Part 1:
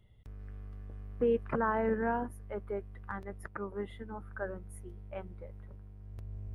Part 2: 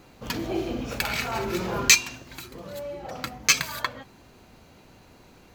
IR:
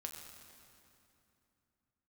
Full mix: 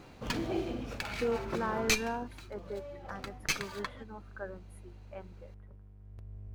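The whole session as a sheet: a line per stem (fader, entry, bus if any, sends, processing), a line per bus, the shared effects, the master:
−3.5 dB, 0.00 s, no send, no processing
+0.5 dB, 0.00 s, no send, windowed peak hold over 3 samples; automatic ducking −11 dB, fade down 1.10 s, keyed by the first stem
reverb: not used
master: high-shelf EQ 7,900 Hz −6 dB

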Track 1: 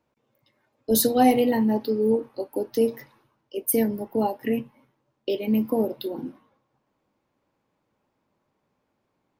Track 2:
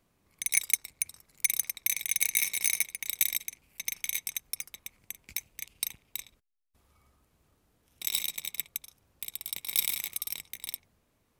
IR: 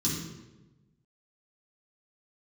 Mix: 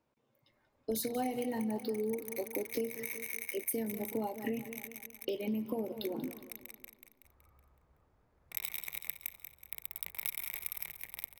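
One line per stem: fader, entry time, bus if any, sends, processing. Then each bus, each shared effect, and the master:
−5.0 dB, 0.00 s, no send, echo send −17 dB, no processing
+1.0 dB, 0.50 s, no send, echo send −10.5 dB, adaptive Wiener filter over 15 samples; octave-band graphic EQ 250/2,000/4,000/8,000 Hz −10/+4/−11/−8 dB; automatic ducking −17 dB, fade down 1.35 s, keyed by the first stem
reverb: not used
echo: repeating echo 187 ms, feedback 50%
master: downward compressor 8 to 1, threshold −32 dBFS, peak gain reduction 14 dB

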